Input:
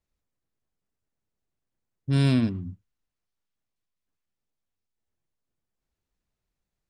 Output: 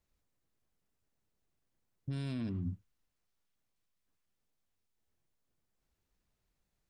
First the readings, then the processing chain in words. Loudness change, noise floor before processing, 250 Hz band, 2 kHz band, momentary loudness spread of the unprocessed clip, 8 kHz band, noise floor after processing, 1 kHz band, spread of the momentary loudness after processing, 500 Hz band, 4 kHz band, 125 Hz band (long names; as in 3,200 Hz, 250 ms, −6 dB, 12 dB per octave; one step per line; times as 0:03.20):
−15.5 dB, below −85 dBFS, −14.0 dB, −16.5 dB, 19 LU, below −15 dB, −83 dBFS, −16.0 dB, 11 LU, −15.5 dB, −17.0 dB, −13.5 dB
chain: downward compressor, threshold −30 dBFS, peak gain reduction 12.5 dB
brickwall limiter −32 dBFS, peak gain reduction 8.5 dB
level +2 dB